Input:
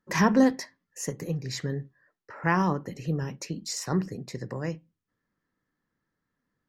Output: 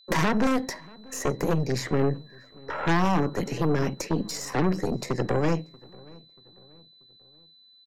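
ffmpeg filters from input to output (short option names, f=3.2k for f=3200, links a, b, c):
-filter_complex "[0:a]acrossover=split=150|1100|2400[a][b][c][d];[b]acontrast=33[e];[a][e][c][d]amix=inputs=4:normalize=0,lowshelf=f=180:g=-7,acrossover=split=130|410|1900|6700[f][g][h][i][j];[f]acompressor=threshold=-45dB:ratio=4[k];[g]acompressor=threshold=-32dB:ratio=4[l];[h]acompressor=threshold=-34dB:ratio=4[m];[i]acompressor=threshold=-50dB:ratio=4[n];[j]acompressor=threshold=-51dB:ratio=4[o];[k][l][m][n][o]amix=inputs=5:normalize=0,aeval=exprs='0.141*(cos(1*acos(clip(val(0)/0.141,-1,1)))-cos(1*PI/2))+0.00282*(cos(3*acos(clip(val(0)/0.141,-1,1)))-cos(3*PI/2))+0.0562*(cos(5*acos(clip(val(0)/0.141,-1,1)))-cos(5*PI/2))+0.0398*(cos(8*acos(clip(val(0)/0.141,-1,1)))-cos(8*PI/2))':c=same,agate=range=-33dB:threshold=-60dB:ratio=3:detection=peak,aeval=exprs='val(0)+0.002*sin(2*PI*4000*n/s)':c=same,atempo=0.85,asplit=2[p][q];[q]adelay=635,lowpass=f=1.8k:p=1,volume=-24dB,asplit=2[r][s];[s]adelay=635,lowpass=f=1.8k:p=1,volume=0.45,asplit=2[t][u];[u]adelay=635,lowpass=f=1.8k:p=1,volume=0.45[v];[p][r][t][v]amix=inputs=4:normalize=0"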